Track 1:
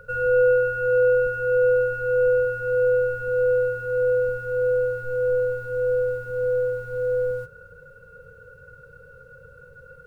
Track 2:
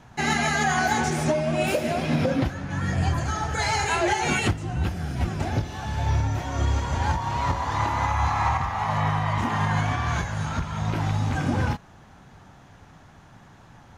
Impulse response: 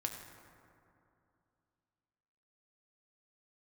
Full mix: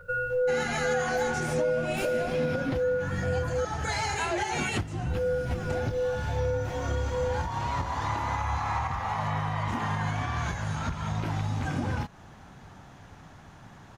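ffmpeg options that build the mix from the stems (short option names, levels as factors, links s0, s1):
-filter_complex "[0:a]asplit=2[s0][s1];[s1]adelay=10.2,afreqshift=2.5[s2];[s0][s2]amix=inputs=2:normalize=1,volume=1.41,asplit=3[s3][s4][s5];[s3]atrim=end=3.65,asetpts=PTS-STARTPTS,afade=t=out:st=3.646:d=0.004:c=hsin[s6];[s4]atrim=start=3.65:end=5.1,asetpts=PTS-STARTPTS,volume=0[s7];[s5]atrim=start=5.1,asetpts=PTS-STARTPTS,afade=t=in:d=0.004:c=hsin[s8];[s6][s7][s8]concat=n=3:v=0:a=1[s9];[1:a]adelay=300,volume=1.06[s10];[s9][s10]amix=inputs=2:normalize=0,acompressor=threshold=0.0355:ratio=2.5"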